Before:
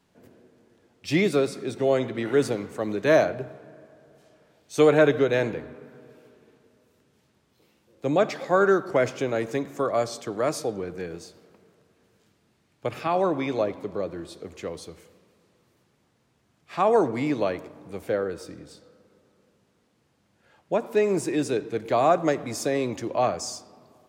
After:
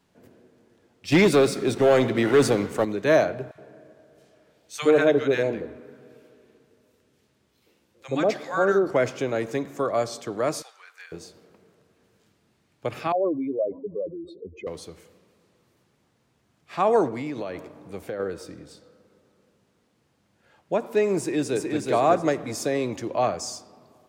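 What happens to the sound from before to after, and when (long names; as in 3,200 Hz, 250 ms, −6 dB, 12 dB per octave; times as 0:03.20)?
0:01.12–0:02.85: leveller curve on the samples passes 2
0:03.51–0:08.88: three-band delay without the direct sound highs, lows, mids 40/70 ms, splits 150/950 Hz
0:10.62–0:11.12: high-pass filter 1,200 Hz 24 dB per octave
0:13.12–0:14.67: expanding power law on the bin magnitudes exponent 2.8
0:17.08–0:18.20: downward compressor 10 to 1, threshold −27 dBFS
0:21.18–0:21.85: delay throw 370 ms, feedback 30%, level −3 dB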